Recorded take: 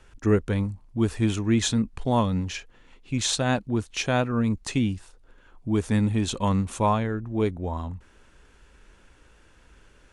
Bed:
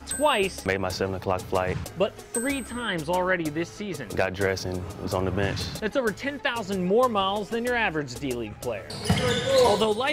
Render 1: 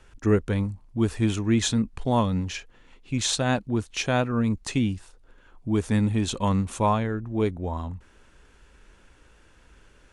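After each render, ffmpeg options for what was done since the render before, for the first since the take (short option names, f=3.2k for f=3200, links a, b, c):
-af anull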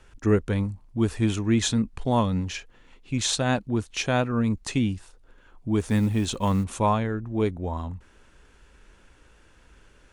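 -filter_complex "[0:a]asettb=1/sr,asplit=3[a][b][c];[a]atrim=end=5.804[d];[b]atrim=start=5.8:end=6.64,asetpts=PTS-STARTPTS,afade=t=in:d=0.004:c=qsin,afade=t=out:st=0.836:d=0.004:c=qsin,acrusher=bits=8:mode=log:mix=0:aa=0.000001[e];[c]atrim=start=6.636[f];[d][e]acrossfade=d=0.004:c1=hsin:c2=qsin[g];[g][f]acrossfade=d=0.004:c1=qsin:c2=hsin"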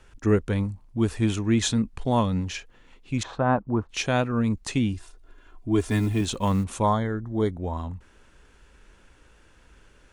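-filter_complex "[0:a]asettb=1/sr,asplit=3[a][b][c];[a]atrim=end=3.234[d];[b]atrim=start=3.23:end=3.89,asetpts=PTS-STARTPTS,afade=t=in:d=0.004:c=qsin,afade=t=out:st=0.656:d=0.004:c=qsin,lowpass=f=1.1k:t=q:w=2.3[e];[c]atrim=start=3.886[f];[d][e]acrossfade=d=0.004:c1=hsin:c2=qsin[g];[g][f]acrossfade=d=0.004:c1=qsin:c2=hsin,asettb=1/sr,asplit=3[h][i][j];[h]atrim=end=4.934[k];[i]atrim=start=4.93:end=6.21,asetpts=PTS-STARTPTS,afade=t=in:d=0.004:c=qsin,afade=t=out:st=1.276:d=0.004:c=qsin,aecho=1:1:2.9:0.65,atrim=end_sample=56448[l];[j]atrim=start=6.206[m];[k][l]acrossfade=d=0.004:c1=hsin:c2=qsin[n];[n][m]acrossfade=d=0.004:c1=qsin:c2=hsin,asplit=3[o][p][q];[o]afade=t=out:st=6.82:d=0.02[r];[p]asuperstop=centerf=2600:order=20:qfactor=3.3,afade=t=in:st=6.82:d=0.02,afade=t=out:st=7.51:d=0.02[s];[q]afade=t=in:st=7.51:d=0.02[t];[r][s][t]amix=inputs=3:normalize=0"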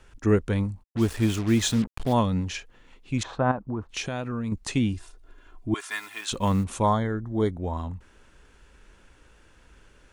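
-filter_complex "[0:a]asplit=3[a][b][c];[a]afade=t=out:st=0.82:d=0.02[d];[b]acrusher=bits=5:mix=0:aa=0.5,afade=t=in:st=0.82:d=0.02,afade=t=out:st=2.12:d=0.02[e];[c]afade=t=in:st=2.12:d=0.02[f];[d][e][f]amix=inputs=3:normalize=0,asettb=1/sr,asplit=3[g][h][i];[g]atrim=end=3.514[j];[h]atrim=start=3.51:end=4.52,asetpts=PTS-STARTPTS,afade=t=in:d=0.004:c=qsin,afade=t=out:st=1.006:d=0.004:c=qsin,acompressor=threshold=-26dB:ratio=6:attack=3.2:release=140:knee=1:detection=peak[k];[i]atrim=start=4.516[l];[j][k]acrossfade=d=0.004:c1=hsin:c2=qsin[m];[m][l]acrossfade=d=0.004:c1=qsin:c2=hsin,asettb=1/sr,asplit=3[n][o][p];[n]atrim=end=5.744[q];[o]atrim=start=5.74:end=6.32,asetpts=PTS-STARTPTS,afade=t=in:d=0.004:c=qsin,afade=t=out:st=0.576:d=0.004:c=qsin,highpass=f=1.3k:t=q:w=1.6[r];[p]atrim=start=6.316[s];[q][r]acrossfade=d=0.004:c1=hsin:c2=qsin[t];[t][s]acrossfade=d=0.004:c1=qsin:c2=hsin"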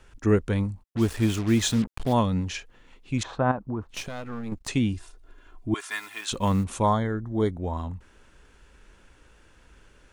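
-filter_complex "[0:a]asettb=1/sr,asplit=3[a][b][c];[a]atrim=end=3.944[d];[b]atrim=start=3.94:end=4.68,asetpts=PTS-STARTPTS,afade=t=in:d=0.004:c=qsin,afade=t=out:st=0.736:d=0.004:c=qsin,aeval=exprs='if(lt(val(0),0),0.251*val(0),val(0))':c=same[e];[c]atrim=start=4.676[f];[d][e]acrossfade=d=0.004:c1=hsin:c2=qsin[g];[g][f]acrossfade=d=0.004:c1=qsin:c2=hsin"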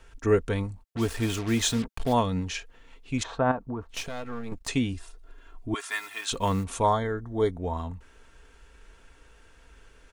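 -af "equalizer=f=210:w=4.6:g=-11.5,aecho=1:1:4.4:0.39"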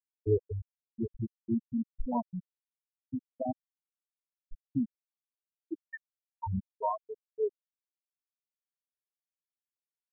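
-af "afftfilt=real='re*gte(hypot(re,im),0.398)':imag='im*gte(hypot(re,im),0.398)':win_size=1024:overlap=0.75,equalizer=f=710:w=0.39:g=-6"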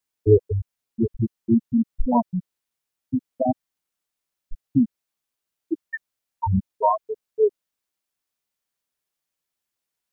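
-af "volume=12dB"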